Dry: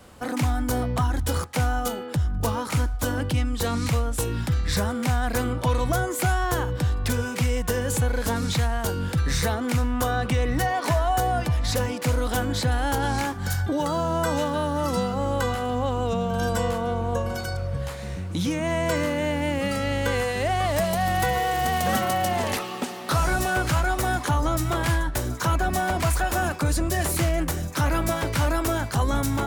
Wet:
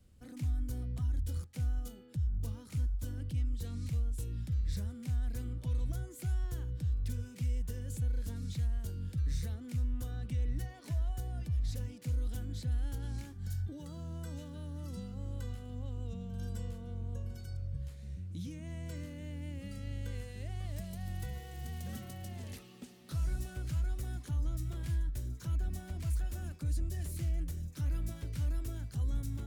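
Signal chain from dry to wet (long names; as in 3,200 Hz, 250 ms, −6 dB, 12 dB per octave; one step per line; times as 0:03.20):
guitar amp tone stack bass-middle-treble 10-0-1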